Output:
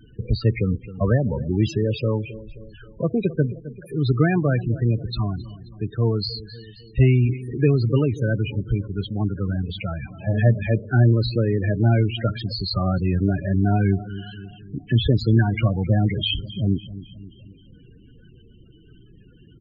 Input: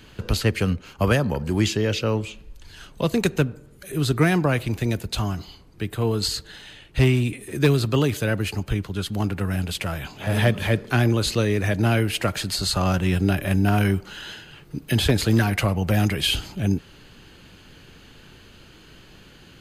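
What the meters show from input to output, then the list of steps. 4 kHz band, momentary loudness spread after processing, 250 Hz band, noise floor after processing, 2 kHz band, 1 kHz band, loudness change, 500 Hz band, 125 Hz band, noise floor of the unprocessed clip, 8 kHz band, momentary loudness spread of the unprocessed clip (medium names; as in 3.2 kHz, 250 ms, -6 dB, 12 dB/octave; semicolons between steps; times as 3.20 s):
-4.0 dB, 14 LU, +0.5 dB, -49 dBFS, -5.5 dB, -4.0 dB, +0.5 dB, -0.5 dB, +3.0 dB, -49 dBFS, under -20 dB, 10 LU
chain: peaking EQ 120 Hz +6 dB 0.22 oct; on a send: feedback delay 265 ms, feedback 55%, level -15.5 dB; on the sum: loudest bins only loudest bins 16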